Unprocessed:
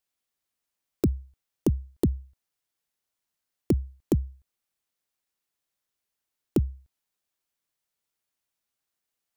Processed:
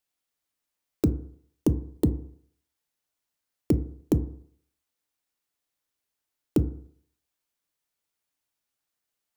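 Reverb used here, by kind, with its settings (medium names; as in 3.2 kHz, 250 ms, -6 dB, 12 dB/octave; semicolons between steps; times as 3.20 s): FDN reverb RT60 0.6 s, low-frequency decay 0.9×, high-frequency decay 0.3×, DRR 9.5 dB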